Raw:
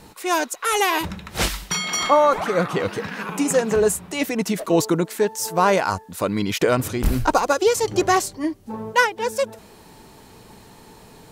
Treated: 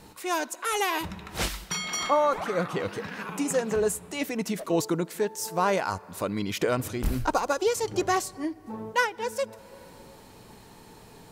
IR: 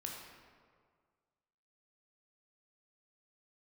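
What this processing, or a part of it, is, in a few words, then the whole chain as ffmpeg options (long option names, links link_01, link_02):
ducked reverb: -filter_complex "[0:a]asplit=3[link_01][link_02][link_03];[1:a]atrim=start_sample=2205[link_04];[link_02][link_04]afir=irnorm=-1:irlink=0[link_05];[link_03]apad=whole_len=499082[link_06];[link_05][link_06]sidechaincompress=threshold=-36dB:ratio=8:attack=16:release=304,volume=-2.5dB[link_07];[link_01][link_07]amix=inputs=2:normalize=0,volume=-7.5dB"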